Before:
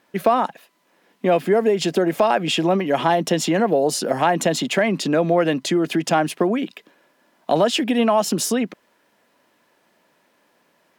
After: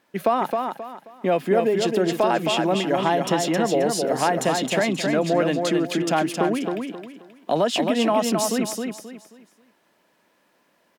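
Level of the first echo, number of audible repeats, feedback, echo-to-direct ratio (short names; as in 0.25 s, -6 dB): -4.5 dB, 3, 30%, -4.0 dB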